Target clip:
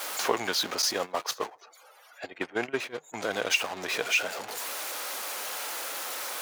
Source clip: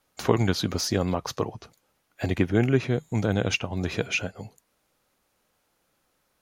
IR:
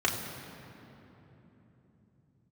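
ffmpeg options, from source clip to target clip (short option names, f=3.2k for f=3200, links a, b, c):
-filter_complex "[0:a]aeval=exprs='val(0)+0.5*0.0398*sgn(val(0))':c=same,highpass=580,asettb=1/sr,asplit=3[a][b][c];[a]atrim=end=0.824[d];[b]atrim=start=0.82:end=3.14,asetpts=PTS-STARTPTS,afade=t=in:d=0.004:c=qsin,afade=t=out:st=2.316:d=0.004:c=qsin,agate=range=-14dB:threshold=-29dB:ratio=16:detection=peak[e];[c]atrim=start=3.136[f];[d][e]acrossfade=d=0.004:c1=hsin:c2=qsin[g];[g][f]acrossfade=d=0.004:c1=qsin:c2=hsin,afftdn=nr=30:nf=-51"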